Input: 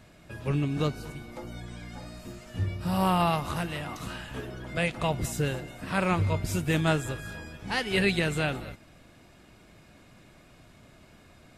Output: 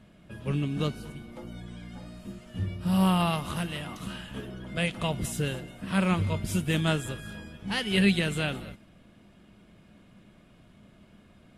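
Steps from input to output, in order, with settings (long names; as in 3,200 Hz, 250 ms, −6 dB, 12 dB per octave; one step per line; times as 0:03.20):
thirty-one-band graphic EQ 200 Hz +10 dB, 800 Hz −3 dB, 3,150 Hz +8 dB, 10,000 Hz +7 dB
one half of a high-frequency compander decoder only
level −2.5 dB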